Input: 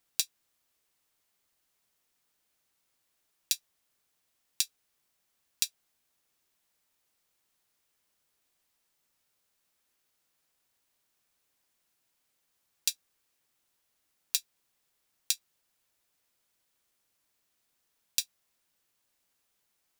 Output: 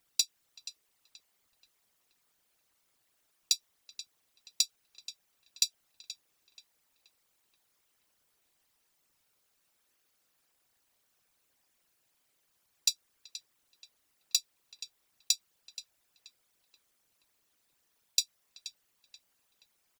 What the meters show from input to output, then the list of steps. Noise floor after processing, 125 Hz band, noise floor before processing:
-76 dBFS, n/a, -78 dBFS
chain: formant sharpening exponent 2; on a send: tape echo 0.479 s, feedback 63%, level -7.5 dB, low-pass 2100 Hz; on the sum: overloaded stage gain 10.5 dB; speakerphone echo 0.38 s, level -20 dB; gain +2 dB

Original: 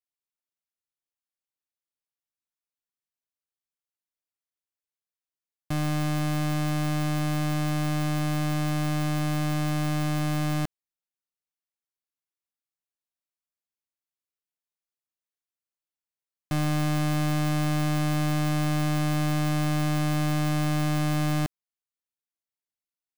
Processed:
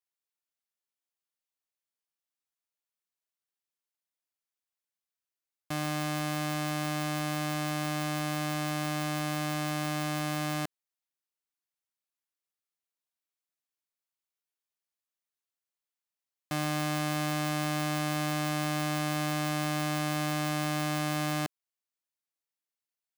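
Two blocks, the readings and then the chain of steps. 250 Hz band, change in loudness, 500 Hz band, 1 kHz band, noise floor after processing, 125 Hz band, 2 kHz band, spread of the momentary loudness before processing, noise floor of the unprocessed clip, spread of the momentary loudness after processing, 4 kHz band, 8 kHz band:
-5.5 dB, -4.5 dB, -1.5 dB, -1.0 dB, under -85 dBFS, -9.0 dB, 0.0 dB, 2 LU, under -85 dBFS, 2 LU, 0.0 dB, 0.0 dB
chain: HPF 390 Hz 6 dB/oct

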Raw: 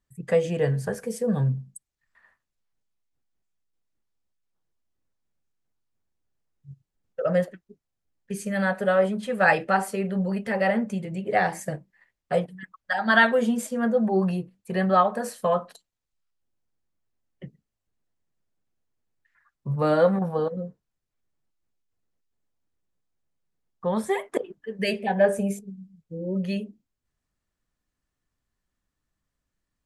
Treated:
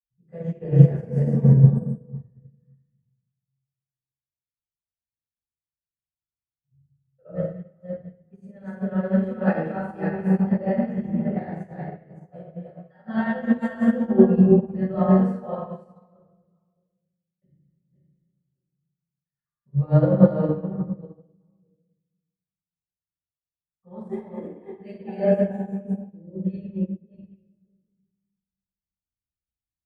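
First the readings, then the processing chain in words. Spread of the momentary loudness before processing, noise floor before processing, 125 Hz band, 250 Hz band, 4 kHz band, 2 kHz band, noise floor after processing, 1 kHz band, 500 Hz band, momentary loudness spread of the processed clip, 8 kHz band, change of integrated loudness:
15 LU, -84 dBFS, +10.0 dB, +6.0 dB, under -15 dB, -12.5 dB, under -85 dBFS, -8.5 dB, -1.0 dB, 22 LU, under -25 dB, +3.0 dB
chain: reverse delay 0.305 s, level -1.5 dB; tilt -4.5 dB/oct; delay with a stepping band-pass 0.201 s, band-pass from 2600 Hz, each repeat -1.4 oct, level -7 dB; dynamic EQ 360 Hz, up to +4 dB, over -33 dBFS, Q 3; HPF 67 Hz; shoebox room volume 480 m³, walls mixed, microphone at 6.6 m; upward expander 2.5:1, over -12 dBFS; gain -14.5 dB

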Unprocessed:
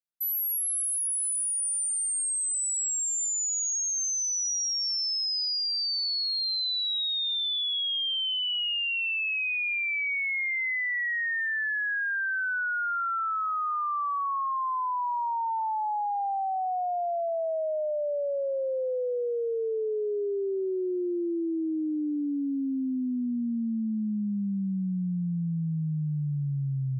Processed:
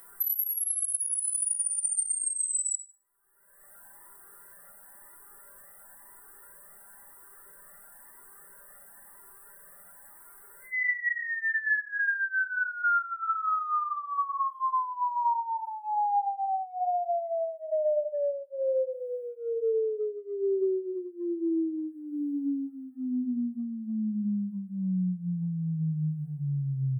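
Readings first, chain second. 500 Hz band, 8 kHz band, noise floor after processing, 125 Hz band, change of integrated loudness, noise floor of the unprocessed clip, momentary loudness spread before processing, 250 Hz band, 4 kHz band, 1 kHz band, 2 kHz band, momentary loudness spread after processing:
-0.5 dB, -4.0 dB, -53 dBFS, n/a, -2.0 dB, -29 dBFS, 4 LU, -2.0 dB, under -40 dB, -0.5 dB, -2.5 dB, 23 LU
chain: brick-wall FIR band-stop 2000–7800 Hz; low shelf 280 Hz -10 dB; notches 50/100/150/200 Hz; comb 5.1 ms, depth 82%; upward compressor, threshold -28 dBFS; shoebox room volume 50 m³, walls mixed, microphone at 0.78 m; compressor, threshold -29 dBFS, peak gain reduction 17 dB; cascading flanger rising 0.98 Hz; gain +6.5 dB

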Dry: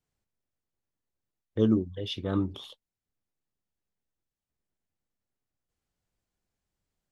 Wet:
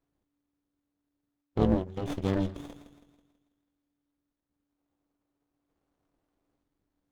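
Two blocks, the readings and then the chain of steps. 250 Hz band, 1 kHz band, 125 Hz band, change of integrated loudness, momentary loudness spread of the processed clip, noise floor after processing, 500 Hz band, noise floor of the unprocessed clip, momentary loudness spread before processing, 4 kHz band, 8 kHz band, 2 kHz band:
-2.0 dB, +6.5 dB, +0.5 dB, -1.0 dB, 15 LU, -84 dBFS, 0.0 dB, under -85 dBFS, 17 LU, -9.5 dB, n/a, +1.5 dB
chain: spectral gain 4.77–6.61, 290–1600 Hz +8 dB; in parallel at 0 dB: compressor, threshold -36 dBFS, peak gain reduction 16.5 dB; on the sum: thin delay 0.163 s, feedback 46%, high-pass 2000 Hz, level -8 dB; AM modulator 290 Hz, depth 100%; running maximum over 17 samples; gain +1.5 dB

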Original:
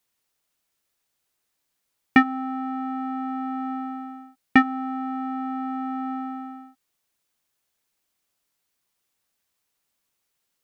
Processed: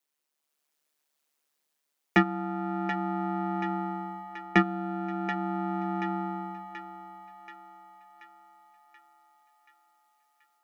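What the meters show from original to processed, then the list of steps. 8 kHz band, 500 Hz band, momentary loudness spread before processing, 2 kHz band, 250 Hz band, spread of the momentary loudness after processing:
n/a, +12.0 dB, 16 LU, -5.5 dB, -5.0 dB, 20 LU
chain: elliptic high-pass 250 Hz; AGC gain up to 5 dB; ring modulator 73 Hz; soft clip -5 dBFS, distortion -20 dB; on a send: thinning echo 0.731 s, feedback 60%, high-pass 490 Hz, level -9 dB; on the sum: gain -3 dB

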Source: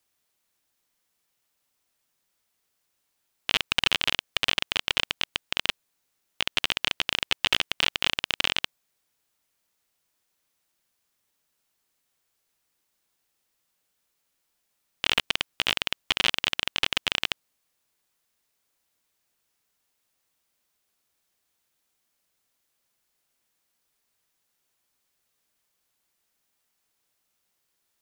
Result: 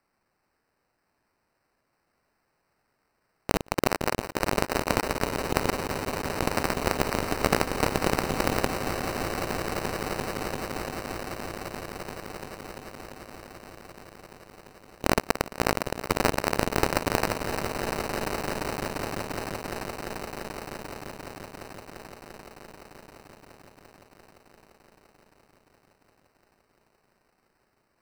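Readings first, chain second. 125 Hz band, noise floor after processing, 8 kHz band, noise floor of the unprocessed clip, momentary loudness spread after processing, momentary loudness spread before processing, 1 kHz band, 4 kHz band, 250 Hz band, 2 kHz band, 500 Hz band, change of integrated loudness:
+14.5 dB, -75 dBFS, +4.5 dB, -77 dBFS, 19 LU, 6 LU, +9.0 dB, -11.0 dB, +15.0 dB, -2.5 dB, +14.5 dB, -3.5 dB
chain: swelling echo 0.172 s, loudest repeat 8, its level -13 dB; sample-and-hold 13×

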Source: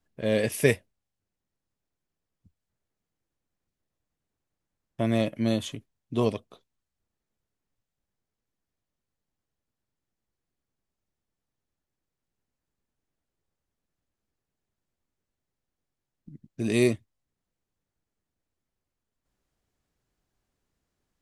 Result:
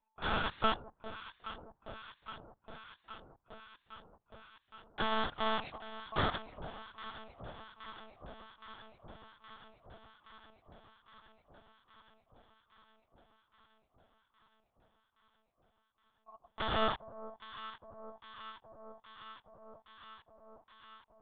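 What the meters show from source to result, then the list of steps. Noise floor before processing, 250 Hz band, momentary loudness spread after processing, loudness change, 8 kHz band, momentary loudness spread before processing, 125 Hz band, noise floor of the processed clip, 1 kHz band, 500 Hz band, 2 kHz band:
under -85 dBFS, -15.5 dB, 23 LU, -12.5 dB, under -35 dB, 13 LU, -14.0 dB, -80 dBFS, +7.5 dB, -12.0 dB, -3.5 dB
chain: rattling part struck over -31 dBFS, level -16 dBFS; ring modulator 890 Hz; resonant low shelf 210 Hz +10.5 dB, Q 3; on a send: echo with dull and thin repeats by turns 0.409 s, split 880 Hz, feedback 86%, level -12 dB; on the sum: monotone LPC vocoder at 8 kHz 220 Hz; gain -5.5 dB

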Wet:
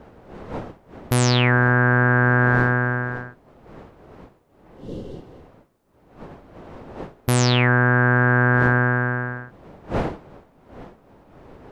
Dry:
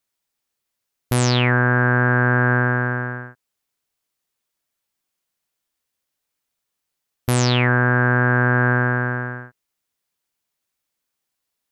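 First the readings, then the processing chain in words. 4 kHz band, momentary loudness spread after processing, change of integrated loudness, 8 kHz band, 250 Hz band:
0.0 dB, 19 LU, -0.5 dB, 0.0 dB, +0.5 dB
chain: wind noise 580 Hz -37 dBFS; spectral repair 4.68–5.42, 580–2700 Hz after

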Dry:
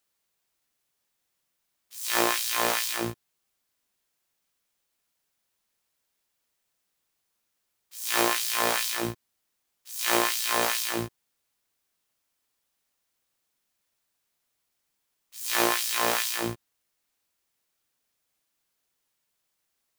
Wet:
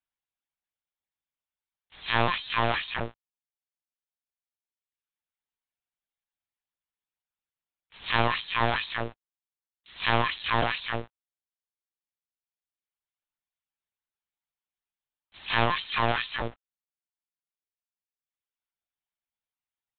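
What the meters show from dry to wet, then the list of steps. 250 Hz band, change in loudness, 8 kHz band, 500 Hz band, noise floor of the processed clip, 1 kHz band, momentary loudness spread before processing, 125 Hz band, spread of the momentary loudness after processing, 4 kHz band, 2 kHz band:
-2.0 dB, -2.0 dB, under -40 dB, -1.5 dB, under -85 dBFS, +1.5 dB, 12 LU, +9.0 dB, 12 LU, -2.5 dB, +1.0 dB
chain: HPF 430 Hz 24 dB/oct; sample leveller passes 3; reverb removal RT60 1.6 s; LPC vocoder at 8 kHz pitch kept; gain -5 dB

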